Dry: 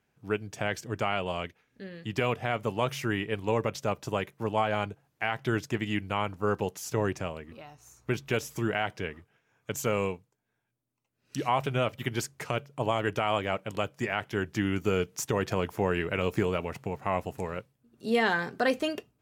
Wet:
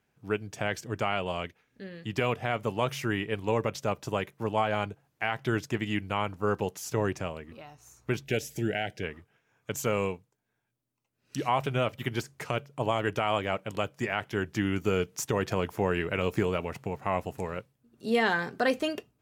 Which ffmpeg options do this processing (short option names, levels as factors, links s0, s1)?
-filter_complex "[0:a]asettb=1/sr,asplit=3[s0][s1][s2];[s0]atrim=end=8.234[s3];[s1]atrim=start=8.23:end=9.03,asetpts=PTS-STARTPTS,afade=t=in:d=0.004:c=qsin,afade=t=out:st=0.796:d=0.004:c=qsin,asuperstop=centerf=1100:order=4:qfactor=1.3[s4];[s2]atrim=start=9.026[s5];[s3][s4]acrossfade=d=0.004:c1=hsin:c2=qsin[s6];[s6][s5]acrossfade=d=0.004:c1=qsin:c2=hsin,asettb=1/sr,asplit=3[s7][s8][s9];[s7]atrim=end=11.464[s10];[s8]atrim=start=11.46:end=12.45,asetpts=PTS-STARTPTS,afade=t=in:d=0.004:c=qsin,afade=t=out:st=0.986:d=0.004:c=qsin,deesser=0.85[s11];[s9]atrim=start=12.446[s12];[s10][s11]acrossfade=d=0.004:c1=hsin:c2=qsin[s13];[s13][s12]acrossfade=d=0.004:c1=qsin:c2=hsin"